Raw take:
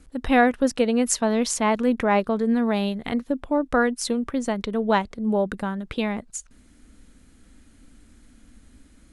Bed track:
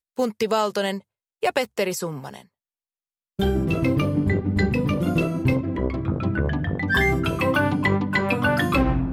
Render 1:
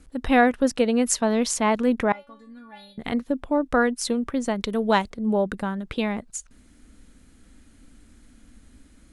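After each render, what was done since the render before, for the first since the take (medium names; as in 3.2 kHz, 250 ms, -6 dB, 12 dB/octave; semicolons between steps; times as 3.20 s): 2.12–2.98 s: inharmonic resonator 280 Hz, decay 0.38 s, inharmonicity 0.002; 4.63–5.10 s: treble shelf 4.9 kHz +11.5 dB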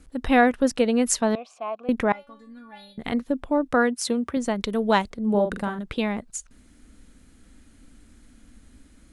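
1.35–1.89 s: vowel filter a; 3.72–4.37 s: high-pass 63 Hz 24 dB/octave; 5.30–5.79 s: doubling 44 ms -6.5 dB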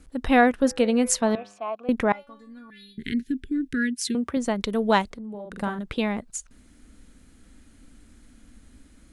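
0.52–1.70 s: de-hum 101.5 Hz, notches 25; 2.70–4.15 s: Chebyshev band-stop 400–1600 Hz, order 4; 5.04–5.58 s: compression 8:1, threshold -34 dBFS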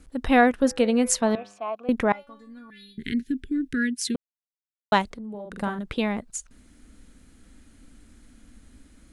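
4.16–4.92 s: mute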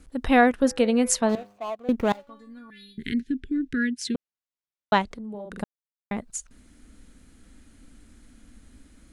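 1.29–2.30 s: median filter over 25 samples; 3.20–5.11 s: distance through air 62 m; 5.64–6.11 s: mute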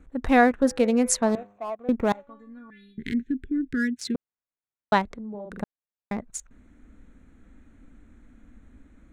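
local Wiener filter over 9 samples; peaking EQ 3 kHz -6.5 dB 0.27 oct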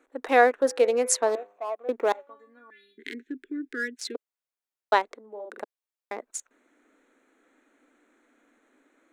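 dynamic bell 470 Hz, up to +3 dB, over -40 dBFS, Q 3.1; inverse Chebyshev high-pass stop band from 170 Hz, stop band 40 dB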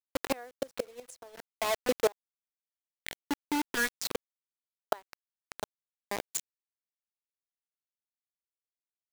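bit crusher 5-bit; inverted gate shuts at -15 dBFS, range -29 dB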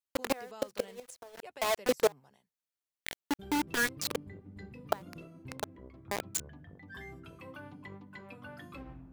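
add bed track -27 dB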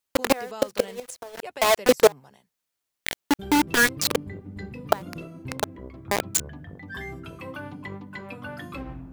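trim +10.5 dB; peak limiter -1 dBFS, peak gain reduction 1 dB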